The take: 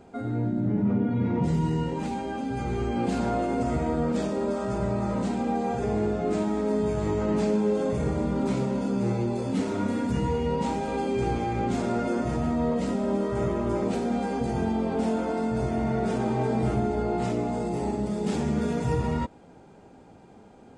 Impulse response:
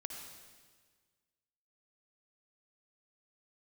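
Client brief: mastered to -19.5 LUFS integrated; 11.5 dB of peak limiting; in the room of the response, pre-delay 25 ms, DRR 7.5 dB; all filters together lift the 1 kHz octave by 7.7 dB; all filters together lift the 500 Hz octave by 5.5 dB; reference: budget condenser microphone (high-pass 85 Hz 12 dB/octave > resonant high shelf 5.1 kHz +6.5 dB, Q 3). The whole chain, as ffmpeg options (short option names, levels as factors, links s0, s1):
-filter_complex "[0:a]equalizer=f=500:t=o:g=5,equalizer=f=1000:t=o:g=8.5,alimiter=limit=0.0841:level=0:latency=1,asplit=2[s0][s1];[1:a]atrim=start_sample=2205,adelay=25[s2];[s1][s2]afir=irnorm=-1:irlink=0,volume=0.531[s3];[s0][s3]amix=inputs=2:normalize=0,highpass=85,highshelf=f=5100:t=q:w=3:g=6.5,volume=2.82"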